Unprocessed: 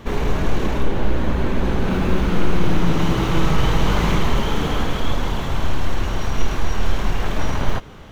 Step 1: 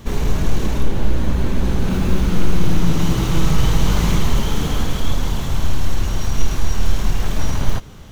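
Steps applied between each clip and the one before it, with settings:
bass and treble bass +7 dB, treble +12 dB
level −4 dB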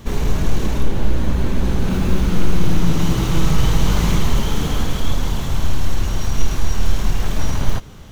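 no processing that can be heard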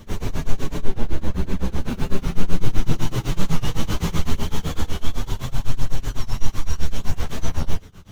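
amplitude tremolo 7.9 Hz, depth 96%
multi-voice chorus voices 2, 0.34 Hz, delay 10 ms, depth 2.8 ms
wow of a warped record 45 rpm, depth 100 cents
level +1.5 dB

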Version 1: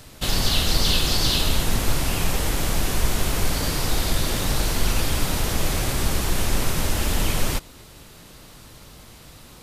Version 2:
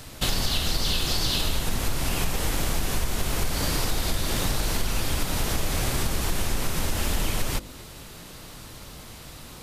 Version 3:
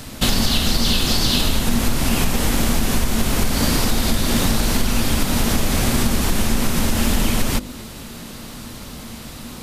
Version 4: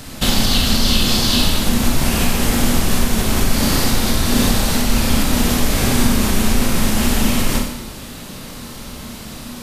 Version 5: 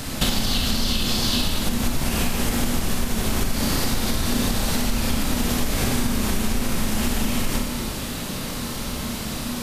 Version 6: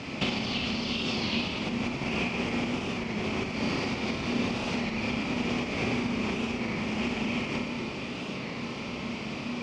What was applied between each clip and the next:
hum removal 50.38 Hz, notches 12; downward compressor 5 to 1, threshold −24 dBFS, peak gain reduction 10 dB; level +3 dB
parametric band 230 Hz +12 dB 0.36 octaves; level +6.5 dB
four-comb reverb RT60 0.84 s, combs from 29 ms, DRR 1 dB
downward compressor 6 to 1, threshold −22 dBFS, peak gain reduction 13 dB; level +3.5 dB
loudspeaker in its box 130–4,700 Hz, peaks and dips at 380 Hz +4 dB, 1,600 Hz −8 dB, 2,400 Hz +9 dB, 3,900 Hz −9 dB; wow of a warped record 33 1/3 rpm, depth 100 cents; level −4.5 dB

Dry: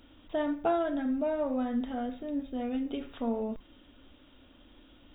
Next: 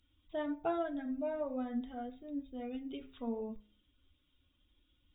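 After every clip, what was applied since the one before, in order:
spectral dynamics exaggerated over time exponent 1.5
hum removal 52.6 Hz, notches 18
level −4.5 dB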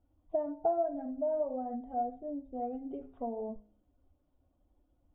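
downward compressor 6 to 1, threshold −40 dBFS, peak gain reduction 10 dB
low-pass with resonance 710 Hz, resonance Q 4.9
level +2 dB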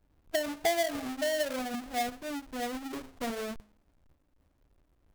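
each half-wave held at its own peak
level −1.5 dB

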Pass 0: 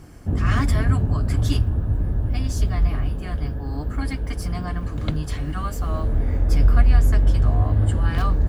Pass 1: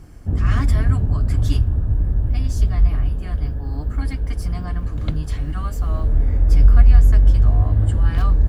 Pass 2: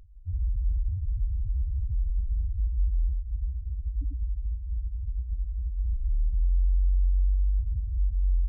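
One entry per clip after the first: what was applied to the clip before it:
low-shelf EQ 79 Hz +10.5 dB; level −3 dB
gain into a clipping stage and back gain 15.5 dB; phaser with its sweep stopped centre 800 Hz, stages 8; spectral peaks only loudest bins 1

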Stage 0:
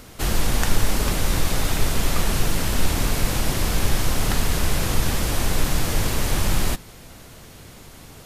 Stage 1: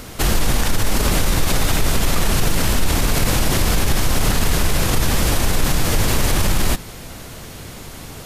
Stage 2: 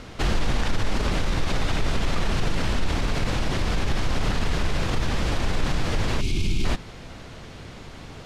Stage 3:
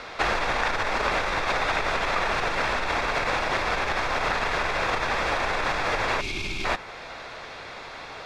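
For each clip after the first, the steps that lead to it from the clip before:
brickwall limiter −16 dBFS, peak gain reduction 11 dB; level +8.5 dB
gain on a spectral selection 0:06.20–0:06.65, 430–2,100 Hz −19 dB; low-pass filter 4,400 Hz 12 dB per octave; speech leveller; level −6 dB
three-way crossover with the lows and the highs turned down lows −21 dB, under 500 Hz, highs −15 dB, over 4,800 Hz; notch filter 3,000 Hz, Q 7.2; dynamic equaliser 4,200 Hz, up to −5 dB, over −52 dBFS, Q 1.4; level +8.5 dB

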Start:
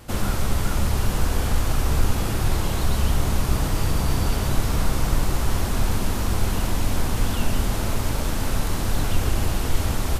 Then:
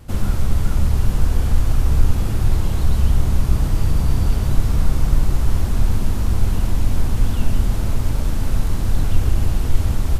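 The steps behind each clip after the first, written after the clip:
low-shelf EQ 230 Hz +11.5 dB
level −5 dB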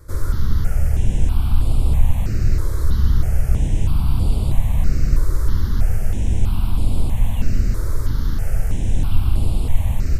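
step-sequenced phaser 3.1 Hz 760–6,100 Hz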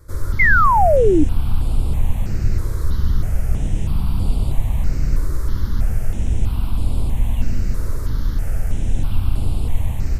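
delay with a low-pass on its return 109 ms, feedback 74%, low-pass 2,700 Hz, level −10 dB
sound drawn into the spectrogram fall, 0:00.39–0:01.24, 280–2,200 Hz −12 dBFS
level −2 dB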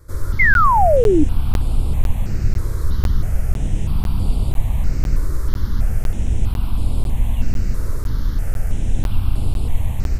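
regular buffer underruns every 0.50 s, samples 512, zero, from 0:00.54

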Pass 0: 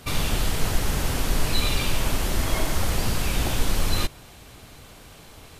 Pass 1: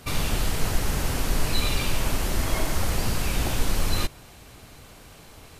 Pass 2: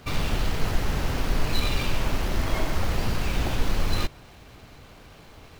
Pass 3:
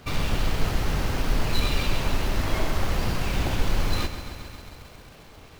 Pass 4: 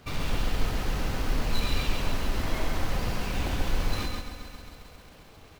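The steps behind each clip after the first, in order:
parametric band 3,400 Hz −2.5 dB 0.33 octaves; level −1 dB
running median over 5 samples
feedback echo at a low word length 134 ms, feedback 80%, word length 8 bits, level −11 dB
single-tap delay 138 ms −4.5 dB; level −5 dB

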